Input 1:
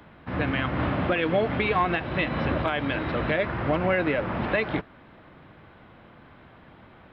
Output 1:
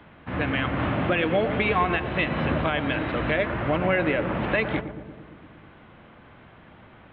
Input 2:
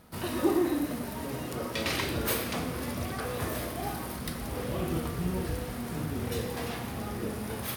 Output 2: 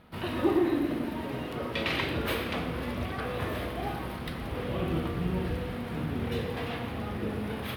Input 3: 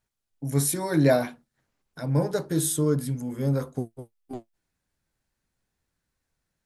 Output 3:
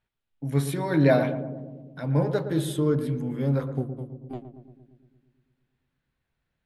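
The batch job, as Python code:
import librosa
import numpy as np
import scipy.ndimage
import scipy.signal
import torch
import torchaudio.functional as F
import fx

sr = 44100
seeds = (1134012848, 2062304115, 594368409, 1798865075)

y = fx.high_shelf_res(x, sr, hz=4500.0, db=-11.5, q=1.5)
y = fx.echo_filtered(y, sr, ms=115, feedback_pct=72, hz=820.0, wet_db=-8.5)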